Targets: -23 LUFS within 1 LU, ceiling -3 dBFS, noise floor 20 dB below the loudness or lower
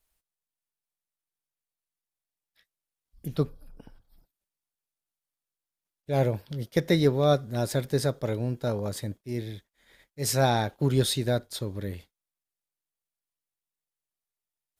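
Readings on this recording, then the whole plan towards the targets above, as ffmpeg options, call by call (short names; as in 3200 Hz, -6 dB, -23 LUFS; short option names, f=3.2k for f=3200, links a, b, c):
loudness -27.5 LUFS; peak -10.0 dBFS; loudness target -23.0 LUFS
-> -af "volume=4.5dB"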